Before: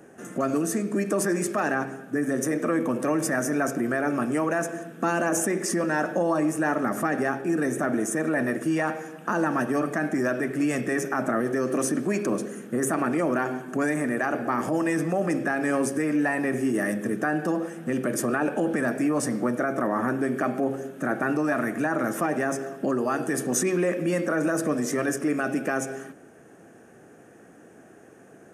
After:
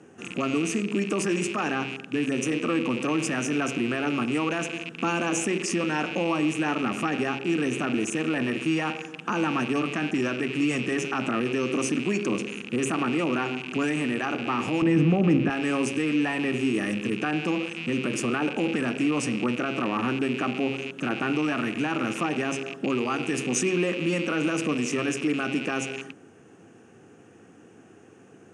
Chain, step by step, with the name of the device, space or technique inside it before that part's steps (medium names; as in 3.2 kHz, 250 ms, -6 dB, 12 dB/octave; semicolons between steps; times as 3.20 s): car door speaker with a rattle (rattle on loud lows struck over -43 dBFS, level -26 dBFS; cabinet simulation 90–8100 Hz, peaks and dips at 97 Hz +9 dB, 620 Hz -10 dB, 1.7 kHz -6 dB, 2.8 kHz +7 dB); 14.82–15.50 s: RIAA curve playback